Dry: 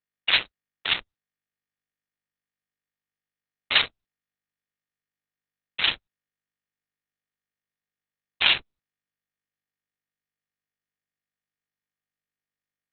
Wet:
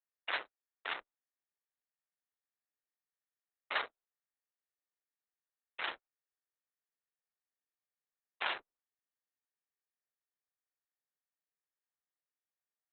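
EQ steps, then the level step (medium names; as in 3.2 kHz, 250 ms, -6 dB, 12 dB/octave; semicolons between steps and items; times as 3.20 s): three-band isolator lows -24 dB, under 350 Hz, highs -21 dB, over 2 kHz; dynamic bell 2.5 kHz, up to -6 dB, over -37 dBFS, Q 2.3; -5.0 dB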